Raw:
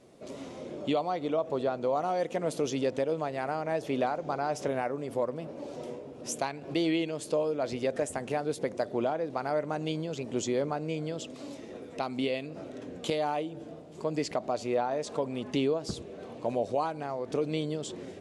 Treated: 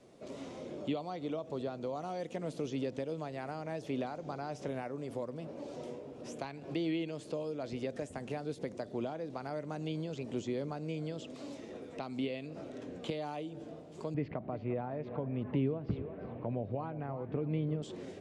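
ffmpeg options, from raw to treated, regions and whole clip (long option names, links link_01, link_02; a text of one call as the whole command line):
ffmpeg -i in.wav -filter_complex "[0:a]asettb=1/sr,asplit=3[link_01][link_02][link_03];[link_01]atrim=end=14.144[link_04];[link_02]atrim=start=14.14:end=17.82,asetpts=PTS-STARTPTS,afade=type=in:duration=0.004:curve=qsin,afade=type=out:start_time=3.676:duration=0.004:curve=qsin,lowpass=frequency=2300:width=0.5412,lowpass=frequency=2300:width=1.3066,equalizer=frequency=110:width_type=o:width=1.3:gain=9,aecho=1:1:348:0.2,atrim=end_sample=162288[link_05];[link_03]atrim=start=17.816[link_06];[link_04][link_05]acrossfade=duration=0.004:curve1=hsin:curve2=qsin[link_07];[link_07][link_06]acrossfade=duration=0.004:curve1=qsin:curve2=hsin,acrossover=split=3100[link_08][link_09];[link_09]acompressor=threshold=-51dB:ratio=4:attack=1:release=60[link_10];[link_08][link_10]amix=inputs=2:normalize=0,lowpass=9800,acrossover=split=300|3000[link_11][link_12][link_13];[link_12]acompressor=threshold=-40dB:ratio=2.5[link_14];[link_11][link_14][link_13]amix=inputs=3:normalize=0,volume=-2.5dB" out.wav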